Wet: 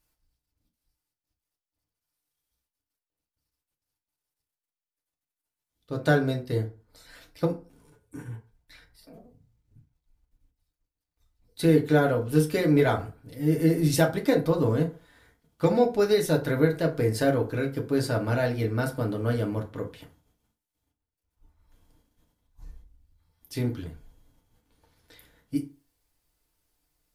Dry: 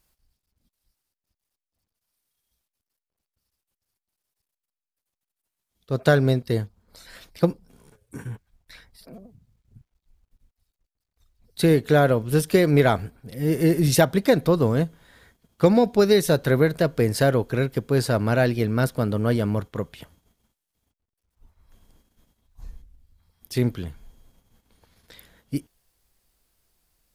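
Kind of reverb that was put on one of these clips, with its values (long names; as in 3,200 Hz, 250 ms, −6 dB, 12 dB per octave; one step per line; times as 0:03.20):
feedback delay network reverb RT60 0.35 s, low-frequency decay 0.95×, high-frequency decay 0.6×, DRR 0.5 dB
level −7.5 dB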